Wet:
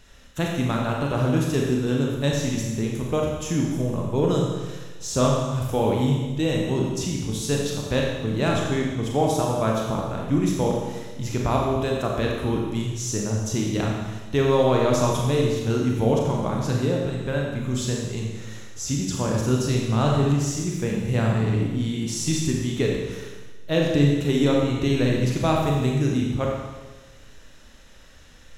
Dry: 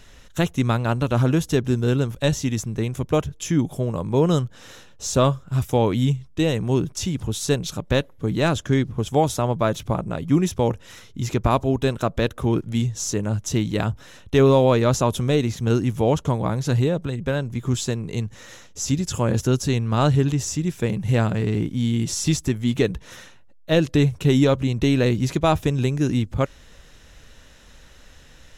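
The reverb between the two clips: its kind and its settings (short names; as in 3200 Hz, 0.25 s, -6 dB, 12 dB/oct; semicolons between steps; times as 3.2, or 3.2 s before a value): Schroeder reverb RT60 1.3 s, combs from 28 ms, DRR -1.5 dB; gain -5 dB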